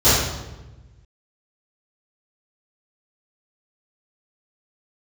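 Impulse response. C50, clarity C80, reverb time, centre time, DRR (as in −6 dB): −1.5 dB, 2.5 dB, 1.1 s, 80 ms, −17.0 dB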